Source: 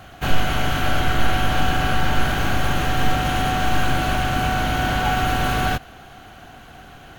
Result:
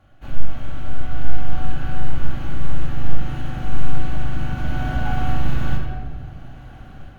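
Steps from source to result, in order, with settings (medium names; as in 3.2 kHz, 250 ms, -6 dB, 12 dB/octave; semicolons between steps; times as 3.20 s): tilt EQ -2 dB/octave; level rider gain up to 7 dB; simulated room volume 1900 m³, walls mixed, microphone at 2.4 m; trim -14.5 dB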